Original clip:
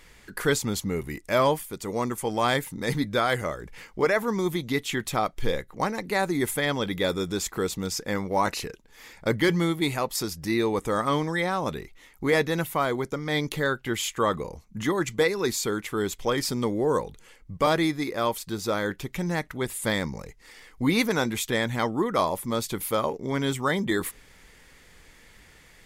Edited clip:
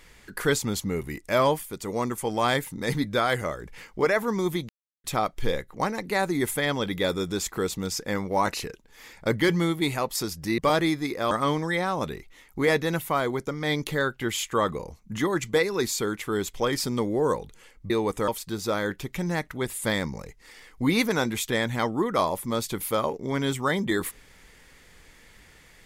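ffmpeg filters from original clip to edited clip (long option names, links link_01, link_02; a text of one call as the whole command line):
ffmpeg -i in.wav -filter_complex "[0:a]asplit=7[link_01][link_02][link_03][link_04][link_05][link_06][link_07];[link_01]atrim=end=4.69,asetpts=PTS-STARTPTS,afade=type=out:start_time=4.686:duration=0.004:curve=hsin[link_08];[link_02]atrim=start=4.69:end=5.04,asetpts=PTS-STARTPTS,volume=0[link_09];[link_03]atrim=start=5.04:end=10.582,asetpts=PTS-STARTPTS,afade=type=in:duration=0.004:curve=hsin[link_10];[link_04]atrim=start=17.548:end=18.282[link_11];[link_05]atrim=start=10.958:end=17.552[link_12];[link_06]atrim=start=10.578:end=10.962[link_13];[link_07]atrim=start=18.278[link_14];[link_08][link_09][link_10]concat=n=3:v=0:a=1[link_15];[link_15][link_11]acrossfade=duration=0.004:curve1=hsin:curve2=hsin[link_16];[link_16][link_12]acrossfade=duration=0.004:curve1=hsin:curve2=hsin[link_17];[link_17][link_13]acrossfade=duration=0.004:curve1=hsin:curve2=hsin[link_18];[link_18][link_14]acrossfade=duration=0.004:curve1=hsin:curve2=hsin" out.wav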